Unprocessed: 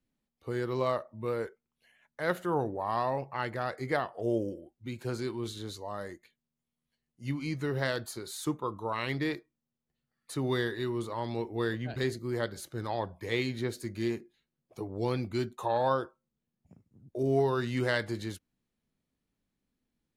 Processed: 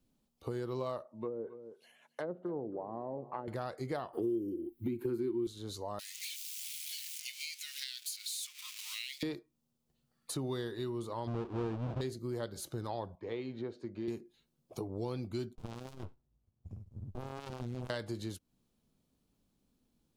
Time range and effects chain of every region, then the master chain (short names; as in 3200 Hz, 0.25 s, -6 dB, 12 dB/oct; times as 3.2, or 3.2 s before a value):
1.07–3.48 treble ducked by the level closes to 400 Hz, closed at -28.5 dBFS + HPF 230 Hz + echo 0.27 s -18.5 dB
4.13–5.47 EQ curve 170 Hz 0 dB, 350 Hz +14 dB, 610 Hz -18 dB, 920 Hz -3 dB, 1400 Hz -2 dB, 2000 Hz +3 dB, 3000 Hz -4 dB, 6200 Hz -14 dB, 9100 Hz -4 dB, 14000 Hz +10 dB + three-band squash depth 70%
5.99–9.23 zero-crossing step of -41.5 dBFS + elliptic high-pass 2200 Hz, stop band 80 dB + three-band squash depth 70%
11.27–12.01 half-waves squared off + Bessel low-pass 1600 Hz
13.15–14.08 HPF 410 Hz 6 dB/oct + tape spacing loss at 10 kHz 38 dB
15.55–17.9 resonant low shelf 130 Hz +11 dB, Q 3 + tube stage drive 33 dB, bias 0.5 + running maximum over 65 samples
whole clip: bell 1900 Hz -9.5 dB 0.8 oct; compressor 3:1, threshold -46 dBFS; gain +7 dB